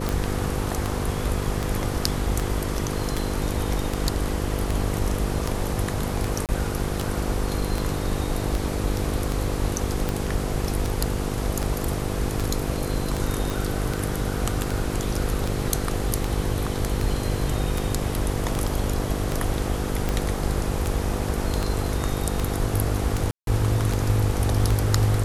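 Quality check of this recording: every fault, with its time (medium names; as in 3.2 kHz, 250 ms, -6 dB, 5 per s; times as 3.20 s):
buzz 50 Hz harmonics 10 -29 dBFS
tick 78 rpm
6.46–6.49 s: dropout 28 ms
13.50 s: pop
23.31–23.47 s: dropout 162 ms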